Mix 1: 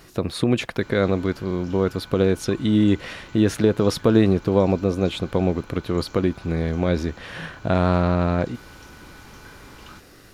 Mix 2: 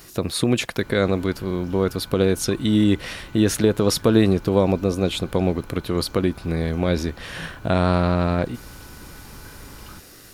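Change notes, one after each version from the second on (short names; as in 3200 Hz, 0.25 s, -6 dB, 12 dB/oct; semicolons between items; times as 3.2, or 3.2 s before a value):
speech: add high shelf 5000 Hz +12 dB; background: add tilt -1.5 dB/oct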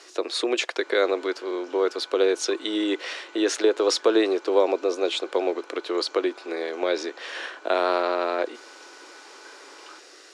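speech: add LPF 7200 Hz 24 dB/oct; master: add steep high-pass 330 Hz 48 dB/oct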